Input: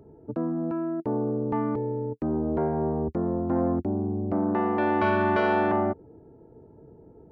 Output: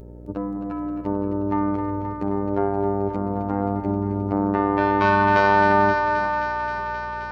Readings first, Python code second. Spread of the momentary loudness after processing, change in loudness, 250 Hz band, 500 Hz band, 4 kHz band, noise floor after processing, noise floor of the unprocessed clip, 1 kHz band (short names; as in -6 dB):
12 LU, +4.5 dB, +2.5 dB, +3.0 dB, n/a, -32 dBFS, -53 dBFS, +9.0 dB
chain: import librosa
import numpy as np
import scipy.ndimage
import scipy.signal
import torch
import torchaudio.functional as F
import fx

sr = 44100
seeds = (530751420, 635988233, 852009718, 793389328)

y = fx.reverse_delay_fb(x, sr, ms=285, feedback_pct=46, wet_db=-13.5)
y = fx.high_shelf(y, sr, hz=2200.0, db=11.5)
y = fx.robotise(y, sr, hz=99.8)
y = fx.echo_thinned(y, sr, ms=264, feedback_pct=84, hz=390.0, wet_db=-8.0)
y = fx.dmg_buzz(y, sr, base_hz=60.0, harmonics=10, level_db=-45.0, tilt_db=-5, odd_only=False)
y = F.gain(torch.from_numpy(y), 4.0).numpy()